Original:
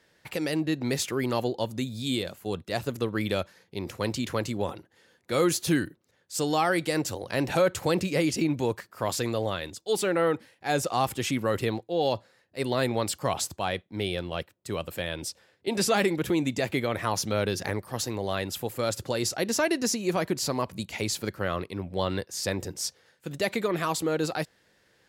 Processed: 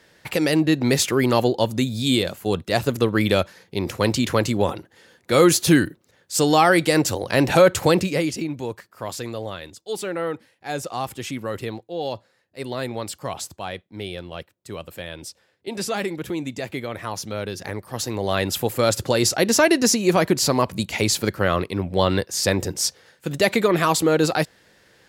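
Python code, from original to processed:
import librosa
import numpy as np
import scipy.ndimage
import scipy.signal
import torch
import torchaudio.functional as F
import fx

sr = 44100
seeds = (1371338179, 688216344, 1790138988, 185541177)

y = fx.gain(x, sr, db=fx.line((7.86, 9.0), (8.47, -2.0), (17.57, -2.0), (18.47, 9.0)))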